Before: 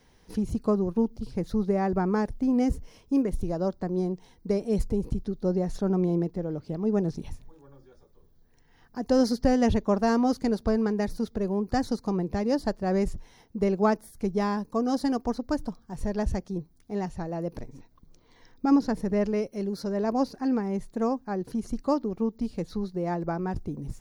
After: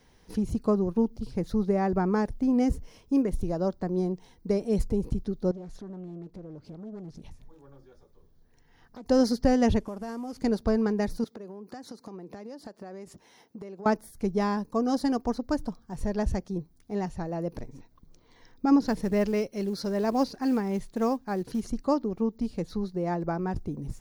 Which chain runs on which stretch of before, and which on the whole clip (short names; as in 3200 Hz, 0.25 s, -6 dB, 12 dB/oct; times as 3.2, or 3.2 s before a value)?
5.51–9.06 compressor 3:1, threshold -43 dBFS + Doppler distortion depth 0.44 ms
9.8–10.38 CVSD 64 kbps + notch 3900 Hz, Q 7.6 + compressor 12:1, threshold -32 dBFS
11.24–13.86 HPF 230 Hz + compressor 16:1, threshold -37 dBFS
18.85–21.7 bell 3500 Hz +5.5 dB 1.9 oct + short-mantissa float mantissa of 4-bit
whole clip: dry